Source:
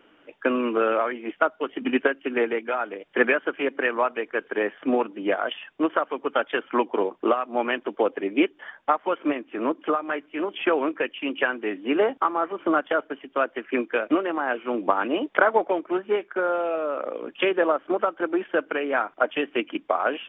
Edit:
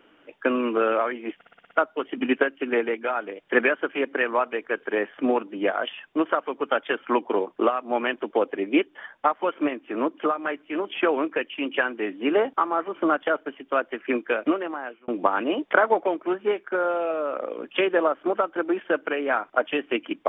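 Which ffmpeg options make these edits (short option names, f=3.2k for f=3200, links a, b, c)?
-filter_complex "[0:a]asplit=8[a][b][c][d][e][f][g][h];[a]atrim=end=1.412[i];[b]atrim=start=1.348:end=1.412[j];[c]atrim=start=1.348:end=1.412[k];[d]atrim=start=1.348:end=1.412[l];[e]atrim=start=1.348:end=1.412[m];[f]atrim=start=1.348:end=1.412[n];[g]atrim=start=1.348:end=14.72,asetpts=PTS-STARTPTS,afade=t=out:st=12.742:d=0.63[o];[h]atrim=start=14.72,asetpts=PTS-STARTPTS,afade=t=in:d=0.004:c=hsin[p];[i][j]acrossfade=d=0.004:c1=hsin:c2=hsin[q];[q][k]acrossfade=d=0.004:c1=hsin:c2=hsin[r];[r][l]acrossfade=d=0.004:c1=hsin:c2=hsin[s];[s][m]acrossfade=d=0.004:c1=hsin:c2=hsin[t];[t][n]acrossfade=d=0.004:c1=hsin:c2=hsin[u];[o][p]concat=n=2:v=0:a=1[v];[u][v]acrossfade=d=0.004:c1=hsin:c2=hsin"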